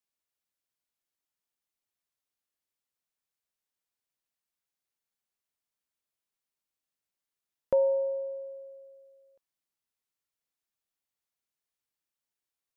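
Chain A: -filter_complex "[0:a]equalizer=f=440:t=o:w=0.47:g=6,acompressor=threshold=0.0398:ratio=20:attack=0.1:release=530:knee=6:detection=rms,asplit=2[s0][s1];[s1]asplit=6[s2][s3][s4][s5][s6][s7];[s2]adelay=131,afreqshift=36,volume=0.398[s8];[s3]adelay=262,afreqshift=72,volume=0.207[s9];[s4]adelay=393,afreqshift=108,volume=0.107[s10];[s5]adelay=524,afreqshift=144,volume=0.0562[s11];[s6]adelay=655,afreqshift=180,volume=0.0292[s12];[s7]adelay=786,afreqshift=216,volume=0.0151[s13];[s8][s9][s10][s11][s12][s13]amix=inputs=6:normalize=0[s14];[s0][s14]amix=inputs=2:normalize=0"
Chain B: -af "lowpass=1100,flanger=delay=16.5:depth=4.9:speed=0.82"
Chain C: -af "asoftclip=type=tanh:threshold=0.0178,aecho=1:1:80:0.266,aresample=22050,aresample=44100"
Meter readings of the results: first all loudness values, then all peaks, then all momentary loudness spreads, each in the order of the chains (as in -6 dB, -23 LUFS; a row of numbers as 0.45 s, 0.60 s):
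-36.5 LUFS, -35.0 LUFS, -42.0 LUFS; -26.0 dBFS, -18.5 dBFS, -35.0 dBFS; 18 LU, 15 LU, 18 LU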